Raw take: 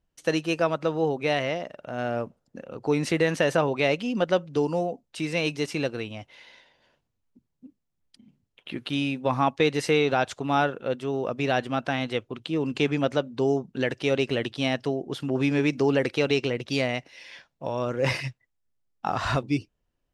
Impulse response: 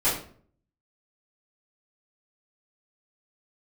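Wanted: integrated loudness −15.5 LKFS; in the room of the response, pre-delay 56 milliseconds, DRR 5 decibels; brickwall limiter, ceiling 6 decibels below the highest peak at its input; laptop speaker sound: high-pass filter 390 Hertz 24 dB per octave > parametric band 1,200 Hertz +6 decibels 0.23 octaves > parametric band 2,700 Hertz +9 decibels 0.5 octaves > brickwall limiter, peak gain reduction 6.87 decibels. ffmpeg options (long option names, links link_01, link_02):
-filter_complex "[0:a]alimiter=limit=-14.5dB:level=0:latency=1,asplit=2[link_01][link_02];[1:a]atrim=start_sample=2205,adelay=56[link_03];[link_02][link_03]afir=irnorm=-1:irlink=0,volume=-18dB[link_04];[link_01][link_04]amix=inputs=2:normalize=0,highpass=frequency=390:width=0.5412,highpass=frequency=390:width=1.3066,equalizer=frequency=1200:width_type=o:width=0.23:gain=6,equalizer=frequency=2700:width_type=o:width=0.5:gain=9,volume=12.5dB,alimiter=limit=-4dB:level=0:latency=1"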